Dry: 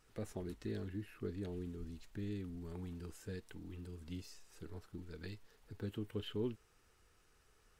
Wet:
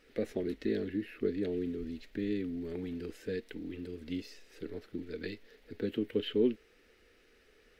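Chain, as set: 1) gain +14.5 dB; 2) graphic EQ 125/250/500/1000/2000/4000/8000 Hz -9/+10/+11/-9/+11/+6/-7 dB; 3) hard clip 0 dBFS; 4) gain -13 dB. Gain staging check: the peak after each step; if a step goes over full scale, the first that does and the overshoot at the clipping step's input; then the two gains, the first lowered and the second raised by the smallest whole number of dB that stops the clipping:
-13.5, -4.0, -4.0, -17.0 dBFS; no overload

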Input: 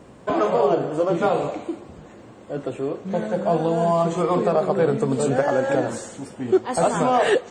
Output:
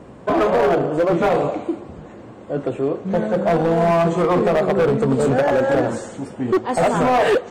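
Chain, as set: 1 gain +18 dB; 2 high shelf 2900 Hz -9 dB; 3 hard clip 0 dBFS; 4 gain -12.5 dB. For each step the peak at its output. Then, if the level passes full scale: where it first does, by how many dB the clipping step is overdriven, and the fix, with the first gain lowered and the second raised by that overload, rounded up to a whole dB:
+10.5, +10.0, 0.0, -12.5 dBFS; step 1, 10.0 dB; step 1 +8 dB, step 4 -2.5 dB

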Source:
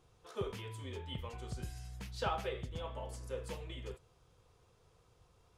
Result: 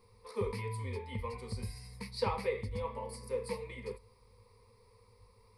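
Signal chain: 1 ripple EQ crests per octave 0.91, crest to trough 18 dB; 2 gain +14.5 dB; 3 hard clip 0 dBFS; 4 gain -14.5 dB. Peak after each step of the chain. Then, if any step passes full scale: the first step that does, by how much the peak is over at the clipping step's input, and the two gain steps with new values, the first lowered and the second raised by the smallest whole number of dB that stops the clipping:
-20.0, -5.5, -5.5, -20.0 dBFS; no overload

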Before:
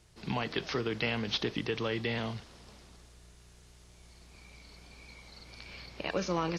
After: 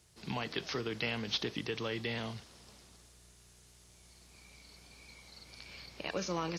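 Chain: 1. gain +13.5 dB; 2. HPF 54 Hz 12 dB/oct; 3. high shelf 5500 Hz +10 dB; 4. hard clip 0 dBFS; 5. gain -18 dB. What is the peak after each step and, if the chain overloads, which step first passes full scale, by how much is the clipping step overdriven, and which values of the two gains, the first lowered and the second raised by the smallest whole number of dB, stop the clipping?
-3.0, -3.5, -2.0, -2.0, -20.0 dBFS; no overload

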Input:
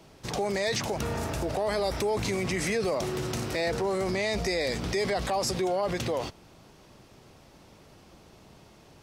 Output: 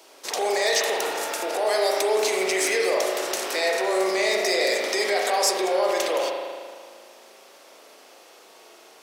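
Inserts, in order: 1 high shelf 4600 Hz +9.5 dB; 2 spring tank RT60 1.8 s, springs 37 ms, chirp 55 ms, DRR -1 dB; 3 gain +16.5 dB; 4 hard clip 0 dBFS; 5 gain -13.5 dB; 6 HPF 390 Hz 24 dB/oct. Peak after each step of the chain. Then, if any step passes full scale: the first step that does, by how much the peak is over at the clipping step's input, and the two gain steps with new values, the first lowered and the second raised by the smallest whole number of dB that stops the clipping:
-11.0, -9.5, +7.0, 0.0, -13.5, -9.5 dBFS; step 3, 7.0 dB; step 3 +9.5 dB, step 5 -6.5 dB

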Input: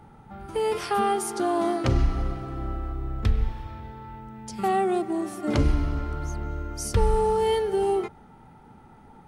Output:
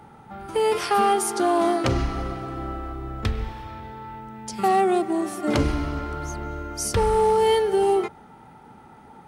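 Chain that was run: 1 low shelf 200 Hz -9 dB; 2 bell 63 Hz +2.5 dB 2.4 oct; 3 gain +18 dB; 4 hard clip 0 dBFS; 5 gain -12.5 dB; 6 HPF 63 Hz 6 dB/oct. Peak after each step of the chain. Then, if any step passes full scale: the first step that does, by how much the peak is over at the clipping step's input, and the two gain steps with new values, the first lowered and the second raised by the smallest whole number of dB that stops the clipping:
-13.5, -13.5, +4.5, 0.0, -12.5, -10.5 dBFS; step 3, 4.5 dB; step 3 +13 dB, step 5 -7.5 dB

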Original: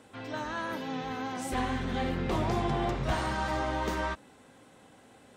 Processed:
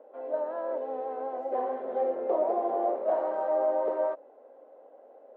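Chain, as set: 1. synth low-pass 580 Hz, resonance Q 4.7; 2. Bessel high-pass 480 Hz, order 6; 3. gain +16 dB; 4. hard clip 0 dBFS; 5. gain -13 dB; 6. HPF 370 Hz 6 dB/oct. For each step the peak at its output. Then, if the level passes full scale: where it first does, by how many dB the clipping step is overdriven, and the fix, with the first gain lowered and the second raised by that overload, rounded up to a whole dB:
-14.5, -18.0, -2.0, -2.0, -15.0, -17.0 dBFS; no overload

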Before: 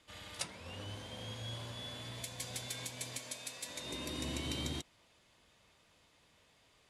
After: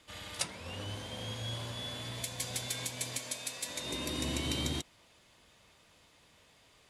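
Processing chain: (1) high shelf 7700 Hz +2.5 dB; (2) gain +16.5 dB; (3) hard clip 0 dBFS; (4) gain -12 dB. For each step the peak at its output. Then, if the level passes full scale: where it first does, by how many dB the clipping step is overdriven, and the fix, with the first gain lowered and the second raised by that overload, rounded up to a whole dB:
-22.0, -5.5, -5.5, -17.5 dBFS; no overload

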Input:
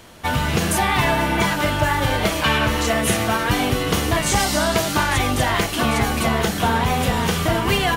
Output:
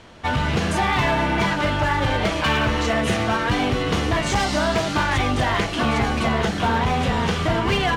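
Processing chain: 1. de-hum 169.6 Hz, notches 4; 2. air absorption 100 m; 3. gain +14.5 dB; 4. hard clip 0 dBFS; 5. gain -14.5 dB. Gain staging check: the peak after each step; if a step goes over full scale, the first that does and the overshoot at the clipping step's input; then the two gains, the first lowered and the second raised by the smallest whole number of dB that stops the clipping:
-7.5, -8.0, +6.5, 0.0, -14.5 dBFS; step 3, 6.5 dB; step 3 +7.5 dB, step 5 -7.5 dB

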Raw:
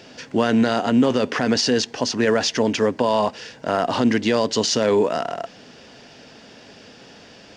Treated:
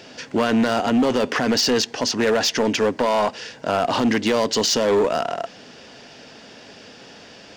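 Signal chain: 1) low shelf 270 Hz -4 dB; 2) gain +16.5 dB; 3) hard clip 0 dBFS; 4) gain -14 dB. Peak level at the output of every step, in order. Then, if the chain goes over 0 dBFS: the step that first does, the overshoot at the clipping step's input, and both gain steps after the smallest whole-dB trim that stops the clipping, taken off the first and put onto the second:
-8.5, +8.0, 0.0, -14.0 dBFS; step 2, 8.0 dB; step 2 +8.5 dB, step 4 -6 dB

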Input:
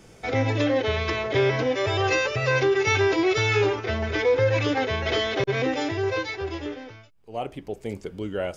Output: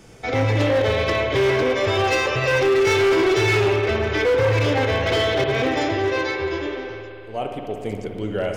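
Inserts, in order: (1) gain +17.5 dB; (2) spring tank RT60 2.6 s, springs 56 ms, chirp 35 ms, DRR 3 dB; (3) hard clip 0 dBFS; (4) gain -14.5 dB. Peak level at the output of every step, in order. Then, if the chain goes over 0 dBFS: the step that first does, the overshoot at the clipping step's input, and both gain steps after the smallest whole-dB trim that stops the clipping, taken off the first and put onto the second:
+7.5, +10.0, 0.0, -14.5 dBFS; step 1, 10.0 dB; step 1 +7.5 dB, step 4 -4.5 dB

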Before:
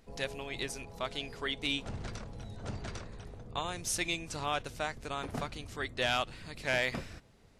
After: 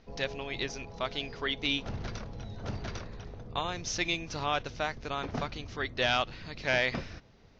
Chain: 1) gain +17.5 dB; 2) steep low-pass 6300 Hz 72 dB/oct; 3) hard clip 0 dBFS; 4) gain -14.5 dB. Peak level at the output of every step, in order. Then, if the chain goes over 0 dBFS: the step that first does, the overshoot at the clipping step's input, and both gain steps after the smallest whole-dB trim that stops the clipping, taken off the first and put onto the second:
-3.5, -2.0, -2.0, -16.5 dBFS; no overload

